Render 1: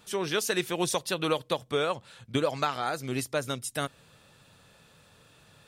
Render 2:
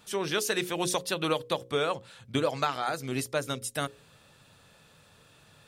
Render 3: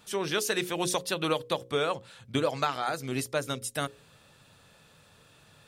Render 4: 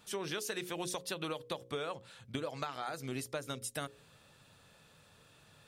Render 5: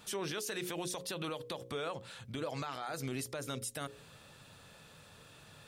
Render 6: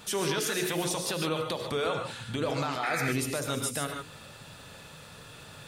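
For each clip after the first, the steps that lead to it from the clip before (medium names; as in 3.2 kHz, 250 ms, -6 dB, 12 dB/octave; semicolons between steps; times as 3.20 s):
hum notches 60/120/180/240/300/360/420/480/540 Hz
no audible change
compression, threshold -31 dBFS, peak gain reduction 9 dB; trim -4 dB
peak limiter -35 dBFS, peak gain reduction 10.5 dB; trim +5.5 dB
gated-style reverb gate 170 ms rising, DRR 3.5 dB; painted sound noise, 2.83–3.13 s, 1.2–2.6 kHz -41 dBFS; trim +7.5 dB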